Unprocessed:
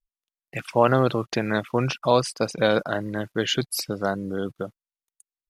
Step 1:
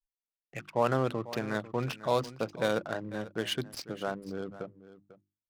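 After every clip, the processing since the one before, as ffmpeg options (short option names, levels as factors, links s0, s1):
-af "bandreject=f=50:t=h:w=6,bandreject=f=100:t=h:w=6,bandreject=f=150:t=h:w=6,bandreject=f=200:t=h:w=6,bandreject=f=250:t=h:w=6,bandreject=f=300:t=h:w=6,bandreject=f=350:t=h:w=6,adynamicsmooth=sensitivity=6:basefreq=820,aecho=1:1:496:0.158,volume=0.376"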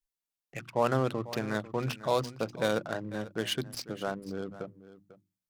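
-af "bass=f=250:g=2,treble=f=4000:g=3,bandreject=f=60.66:t=h:w=4,bandreject=f=121.32:t=h:w=4,bandreject=f=181.98:t=h:w=4,bandreject=f=242.64:t=h:w=4"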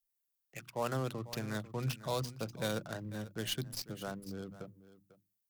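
-filter_complex "[0:a]aemphasis=mode=production:type=75fm,acrossover=split=180|510|6800[s0][s1][s2][s3];[s0]dynaudnorm=f=470:g=5:m=3.16[s4];[s3]aeval=exprs='(tanh(39.8*val(0)+0.55)-tanh(0.55))/39.8':c=same[s5];[s4][s1][s2][s5]amix=inputs=4:normalize=0,volume=0.376"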